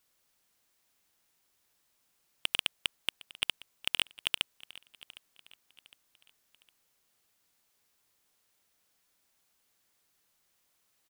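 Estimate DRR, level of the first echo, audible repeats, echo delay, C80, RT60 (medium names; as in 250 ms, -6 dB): no reverb, -20.0 dB, 2, 759 ms, no reverb, no reverb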